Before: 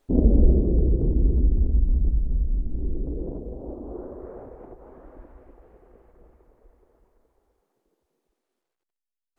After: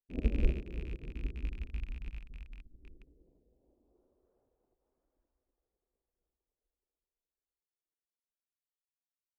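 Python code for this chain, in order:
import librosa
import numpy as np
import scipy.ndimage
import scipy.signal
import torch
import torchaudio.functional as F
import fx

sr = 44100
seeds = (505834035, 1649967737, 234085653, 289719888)

y = fx.rattle_buzz(x, sr, strikes_db=-22.0, level_db=-20.0)
y = fx.upward_expand(y, sr, threshold_db=-29.0, expansion=2.5)
y = y * librosa.db_to_amplitude(-8.5)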